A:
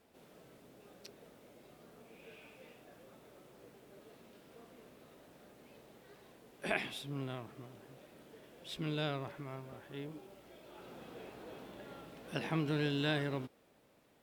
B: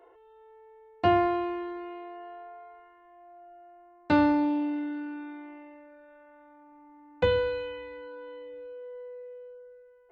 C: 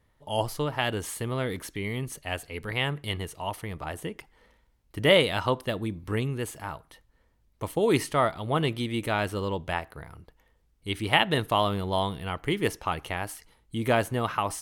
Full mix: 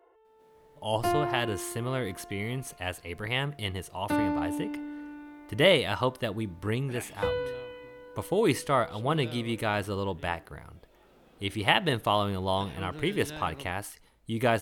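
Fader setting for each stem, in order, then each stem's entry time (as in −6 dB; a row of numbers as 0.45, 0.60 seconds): −7.5, −5.5, −1.5 decibels; 0.25, 0.00, 0.55 seconds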